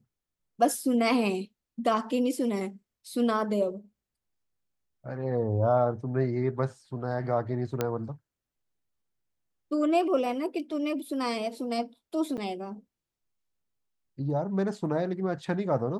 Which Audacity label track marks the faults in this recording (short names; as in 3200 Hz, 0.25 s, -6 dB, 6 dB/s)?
7.810000	7.810000	pop -13 dBFS
12.370000	12.380000	gap 8.2 ms